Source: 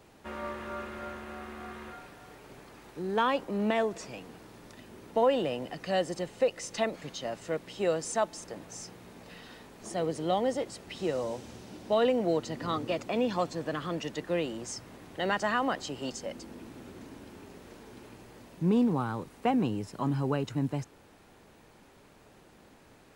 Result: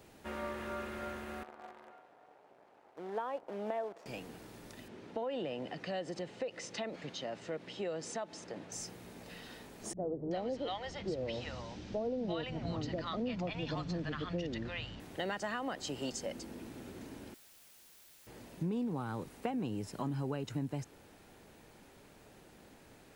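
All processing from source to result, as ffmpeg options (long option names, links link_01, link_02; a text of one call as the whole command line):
ffmpeg -i in.wav -filter_complex "[0:a]asettb=1/sr,asplit=3[link_01][link_02][link_03];[link_01]atrim=end=1.434[link_04];[link_02]atrim=start=1.43:end=4.06,asetpts=PTS-STARTPTS,afade=type=in:duration=0.004:curve=qsin,afade=type=out:start_time=2.626:duration=0.004:curve=qsin,acrusher=bits=7:dc=4:mix=0:aa=0.000001,bandpass=frequency=730:width_type=q:width=1.5[link_05];[link_03]atrim=start=4.056[link_06];[link_04][link_05]acrossfade=duration=0.004:curve1=hsin:curve2=qsin[link_07];[link_07][link_06]acrossfade=duration=0.004:curve1=qsin:curve2=hsin,asettb=1/sr,asplit=3[link_08][link_09][link_10];[link_08]atrim=end=4.884[link_11];[link_09]atrim=start=4.88:end=8.72,asetpts=PTS-STARTPTS,afade=type=in:duration=0.004:curve=qsin,afade=type=out:start_time=3.836:duration=0.004:curve=qsin,highpass=110,lowpass=4600,acompressor=threshold=-36dB:ratio=2:attack=3.2:release=140:knee=1:detection=peak[link_12];[link_10]atrim=start=8.716[link_13];[link_11][link_12]acrossfade=duration=0.004:curve1=hsin:curve2=qsin[link_14];[link_14][link_13]acrossfade=duration=0.004:curve1=qsin:curve2=hsin,asettb=1/sr,asplit=3[link_15][link_16][link_17];[link_15]atrim=end=9.934[link_18];[link_16]atrim=start=9.93:end=15,asetpts=PTS-STARTPTS,afade=type=in:duration=0.004:curve=qsin,afade=type=out:start_time=5.066:duration=0.004:curve=qsin,lowpass=frequency=5400:width=0.5412,lowpass=frequency=5400:width=1.3066,asubboost=boost=4:cutoff=190,acrossover=split=160|770[link_19][link_20][link_21];[link_20]adelay=40[link_22];[link_21]adelay=380[link_23];[link_19][link_22][link_23]amix=inputs=3:normalize=0,atrim=end_sample=223587[link_24];[link_17]atrim=start=14.996[link_25];[link_18][link_24]acrossfade=duration=0.004:curve1=hsin:curve2=qsin[link_26];[link_26][link_25]acrossfade=duration=0.004:curve1=qsin:curve2=hsin,asettb=1/sr,asplit=3[link_27][link_28][link_29];[link_27]atrim=end=17.344[link_30];[link_28]atrim=start=17.34:end=18.27,asetpts=PTS-STARTPTS,afade=type=in:duration=0.004:curve=qsin,afade=type=out:start_time=0.926:duration=0.004:curve=qsin,highpass=frequency=920:width=0.5412,highpass=frequency=920:width=1.3066,aeval=exprs='(mod(668*val(0)+1,2)-1)/668':channel_layout=same[link_31];[link_29]atrim=start=18.266[link_32];[link_30][link_31]acrossfade=duration=0.004:curve1=hsin:curve2=qsin[link_33];[link_33][link_32]acrossfade=duration=0.004:curve1=qsin:curve2=hsin,highshelf=frequency=10000:gain=5,acompressor=threshold=-32dB:ratio=6,equalizer=frequency=1100:width=2.8:gain=-3.5,volume=-1dB" out.wav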